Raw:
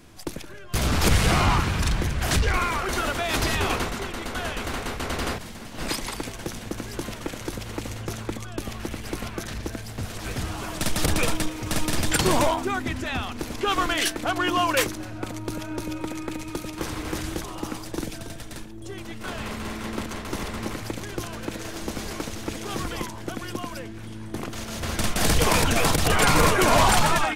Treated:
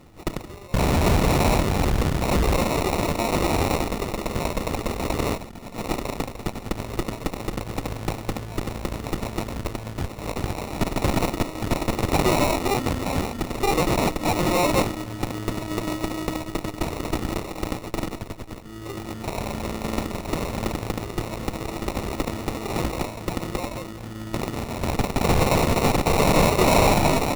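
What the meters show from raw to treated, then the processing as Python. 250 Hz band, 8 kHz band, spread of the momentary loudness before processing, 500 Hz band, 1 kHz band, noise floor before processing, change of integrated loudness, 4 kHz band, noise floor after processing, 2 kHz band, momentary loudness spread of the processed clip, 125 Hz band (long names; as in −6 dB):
+3.5 dB, −3.5 dB, 14 LU, +4.0 dB, +1.0 dB, −38 dBFS, +1.0 dB, −3.0 dB, −38 dBFS, −3.0 dB, 12 LU, +2.5 dB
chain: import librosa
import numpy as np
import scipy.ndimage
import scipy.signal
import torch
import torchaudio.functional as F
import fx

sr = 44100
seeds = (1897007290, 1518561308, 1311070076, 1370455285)

y = fx.sample_hold(x, sr, seeds[0], rate_hz=1600.0, jitter_pct=0)
y = fx.cheby_harmonics(y, sr, harmonics=(8,), levels_db=(-11,), full_scale_db=-10.5)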